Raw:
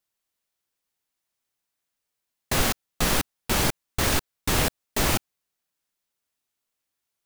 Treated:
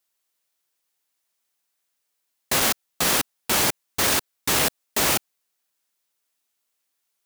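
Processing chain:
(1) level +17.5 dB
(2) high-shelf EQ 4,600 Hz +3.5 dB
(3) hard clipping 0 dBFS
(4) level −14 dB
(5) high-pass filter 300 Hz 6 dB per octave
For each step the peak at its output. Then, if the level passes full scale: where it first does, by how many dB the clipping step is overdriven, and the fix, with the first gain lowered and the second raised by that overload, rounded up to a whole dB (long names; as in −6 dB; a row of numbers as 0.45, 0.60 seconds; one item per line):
+8.0, +9.0, 0.0, −14.0, −9.0 dBFS
step 1, 9.0 dB
step 1 +8.5 dB, step 4 −5 dB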